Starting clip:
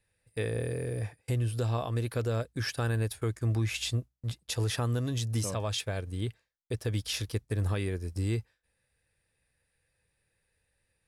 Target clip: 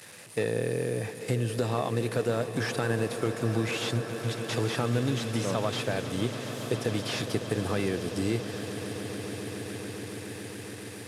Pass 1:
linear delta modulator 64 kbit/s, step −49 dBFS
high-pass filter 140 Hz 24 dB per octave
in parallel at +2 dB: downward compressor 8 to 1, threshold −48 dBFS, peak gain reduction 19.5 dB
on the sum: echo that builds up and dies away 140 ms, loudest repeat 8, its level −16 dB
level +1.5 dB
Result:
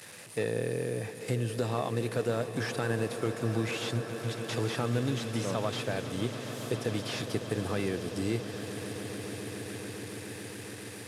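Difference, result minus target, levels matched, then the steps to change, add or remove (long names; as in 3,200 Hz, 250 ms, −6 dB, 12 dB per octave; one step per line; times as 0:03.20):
downward compressor: peak gain reduction +10 dB
change: downward compressor 8 to 1, threshold −36.5 dBFS, peak gain reduction 9.5 dB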